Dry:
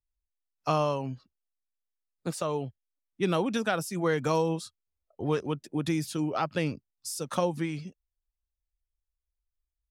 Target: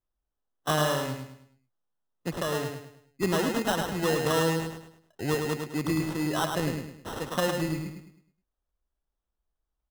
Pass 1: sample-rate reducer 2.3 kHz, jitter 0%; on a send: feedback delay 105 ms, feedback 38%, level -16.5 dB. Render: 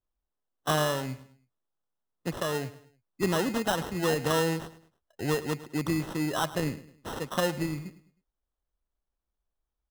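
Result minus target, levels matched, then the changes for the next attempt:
echo-to-direct -11.5 dB
change: feedback delay 105 ms, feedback 38%, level -5 dB

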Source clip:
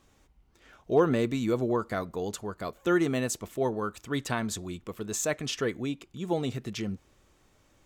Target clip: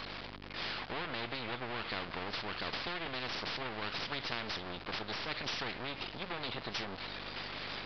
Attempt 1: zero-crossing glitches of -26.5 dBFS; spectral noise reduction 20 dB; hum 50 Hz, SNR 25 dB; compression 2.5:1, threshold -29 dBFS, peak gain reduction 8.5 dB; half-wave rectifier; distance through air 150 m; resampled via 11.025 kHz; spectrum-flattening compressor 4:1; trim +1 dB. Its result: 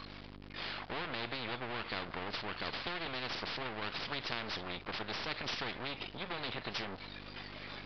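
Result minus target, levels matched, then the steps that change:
zero-crossing glitches: distortion -7 dB
change: zero-crossing glitches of -19.5 dBFS

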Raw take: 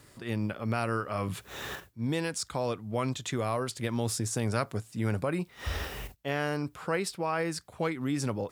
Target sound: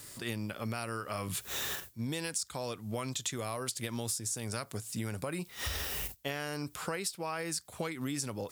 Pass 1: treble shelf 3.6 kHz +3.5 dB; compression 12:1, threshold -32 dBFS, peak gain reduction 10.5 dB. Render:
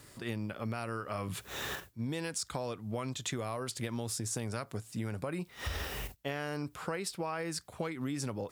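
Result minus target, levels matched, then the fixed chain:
8 kHz band -3.0 dB
treble shelf 3.6 kHz +15.5 dB; compression 12:1, threshold -32 dBFS, peak gain reduction 15 dB

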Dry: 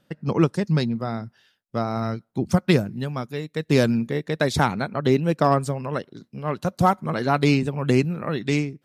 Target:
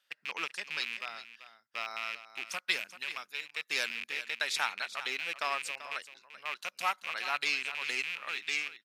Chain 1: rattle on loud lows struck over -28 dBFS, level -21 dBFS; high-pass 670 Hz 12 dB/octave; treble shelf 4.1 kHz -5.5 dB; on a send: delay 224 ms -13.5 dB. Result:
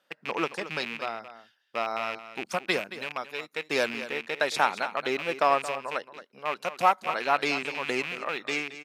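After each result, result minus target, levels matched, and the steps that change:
500 Hz band +12.0 dB; echo 163 ms early
change: high-pass 2 kHz 12 dB/octave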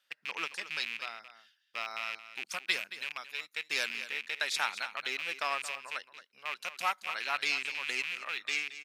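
echo 163 ms early
change: delay 387 ms -13.5 dB

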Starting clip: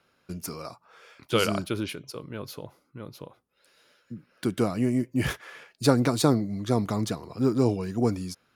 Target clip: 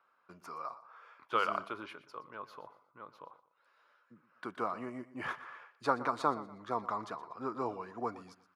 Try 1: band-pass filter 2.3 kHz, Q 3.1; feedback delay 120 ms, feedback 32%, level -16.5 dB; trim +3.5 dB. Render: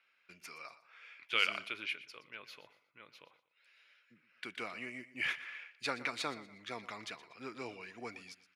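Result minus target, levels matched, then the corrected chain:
1 kHz band -9.0 dB
band-pass filter 1.1 kHz, Q 3.1; feedback delay 120 ms, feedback 32%, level -16.5 dB; trim +3.5 dB

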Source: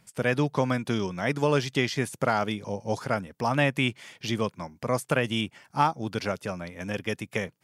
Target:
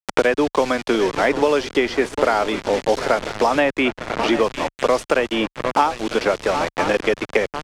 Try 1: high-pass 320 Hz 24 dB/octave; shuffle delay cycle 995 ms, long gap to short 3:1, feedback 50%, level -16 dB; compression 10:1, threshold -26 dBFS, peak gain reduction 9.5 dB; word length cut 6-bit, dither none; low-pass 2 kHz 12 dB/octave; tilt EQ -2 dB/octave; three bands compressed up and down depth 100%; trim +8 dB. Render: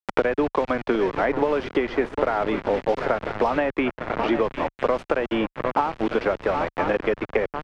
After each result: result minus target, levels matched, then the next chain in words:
8 kHz band -15.5 dB; compression: peak gain reduction +9.5 dB
high-pass 320 Hz 24 dB/octave; shuffle delay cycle 995 ms, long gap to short 3:1, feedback 50%, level -16 dB; compression 10:1, threshold -26 dBFS, peak gain reduction 9.5 dB; word length cut 6-bit, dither none; low-pass 7.1 kHz 12 dB/octave; tilt EQ -2 dB/octave; three bands compressed up and down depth 100%; trim +8 dB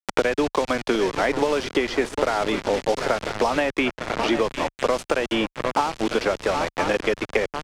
compression: peak gain reduction +9.5 dB
high-pass 320 Hz 24 dB/octave; shuffle delay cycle 995 ms, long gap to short 3:1, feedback 50%, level -16 dB; word length cut 6-bit, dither none; low-pass 7.1 kHz 12 dB/octave; tilt EQ -2 dB/octave; three bands compressed up and down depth 100%; trim +8 dB

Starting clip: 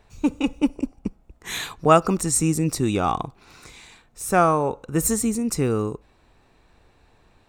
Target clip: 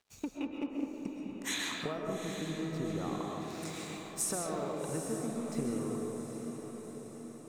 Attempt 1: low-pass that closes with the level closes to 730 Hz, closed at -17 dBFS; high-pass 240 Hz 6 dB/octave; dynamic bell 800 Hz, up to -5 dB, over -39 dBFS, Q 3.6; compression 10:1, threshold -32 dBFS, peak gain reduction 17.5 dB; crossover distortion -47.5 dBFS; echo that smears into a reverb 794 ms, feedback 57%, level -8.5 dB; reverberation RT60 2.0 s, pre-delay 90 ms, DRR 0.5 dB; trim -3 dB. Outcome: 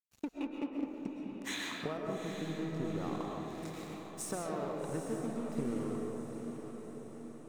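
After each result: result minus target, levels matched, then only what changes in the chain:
8 kHz band -6.5 dB; crossover distortion: distortion +7 dB
add after compression: treble shelf 5.5 kHz +9.5 dB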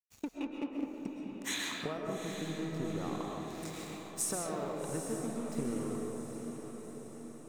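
crossover distortion: distortion +7 dB
change: crossover distortion -56 dBFS

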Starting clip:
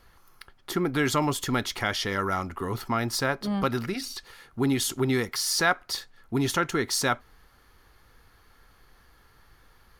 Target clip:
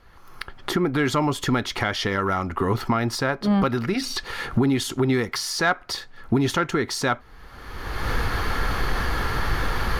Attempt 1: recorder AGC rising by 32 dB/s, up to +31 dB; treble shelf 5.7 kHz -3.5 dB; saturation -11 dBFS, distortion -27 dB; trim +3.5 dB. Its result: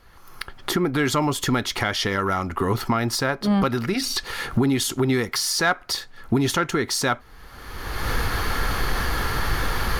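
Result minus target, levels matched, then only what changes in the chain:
8 kHz band +4.5 dB
change: treble shelf 5.7 kHz -12.5 dB

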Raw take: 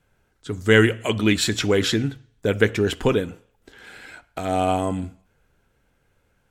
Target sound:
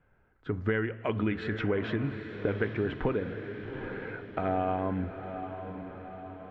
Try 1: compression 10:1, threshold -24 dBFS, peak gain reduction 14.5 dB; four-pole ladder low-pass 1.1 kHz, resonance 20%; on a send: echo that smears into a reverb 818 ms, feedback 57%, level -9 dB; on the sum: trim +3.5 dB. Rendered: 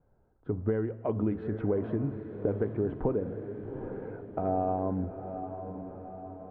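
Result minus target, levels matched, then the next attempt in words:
2 kHz band -15.5 dB
compression 10:1, threshold -24 dBFS, peak gain reduction 14.5 dB; four-pole ladder low-pass 2.4 kHz, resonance 20%; on a send: echo that smears into a reverb 818 ms, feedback 57%, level -9 dB; on the sum: trim +3.5 dB

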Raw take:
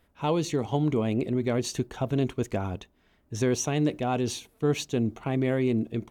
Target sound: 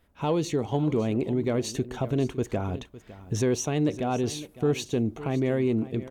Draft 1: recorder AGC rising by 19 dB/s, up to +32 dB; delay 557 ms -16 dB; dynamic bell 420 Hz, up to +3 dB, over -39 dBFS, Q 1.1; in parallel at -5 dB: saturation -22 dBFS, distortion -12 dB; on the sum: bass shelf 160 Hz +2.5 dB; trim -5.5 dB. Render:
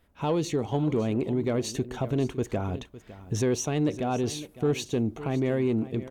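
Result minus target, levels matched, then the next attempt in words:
saturation: distortion +8 dB
recorder AGC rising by 19 dB/s, up to +32 dB; delay 557 ms -16 dB; dynamic bell 420 Hz, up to +3 dB, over -39 dBFS, Q 1.1; in parallel at -5 dB: saturation -15.5 dBFS, distortion -21 dB; on the sum: bass shelf 160 Hz +2.5 dB; trim -5.5 dB

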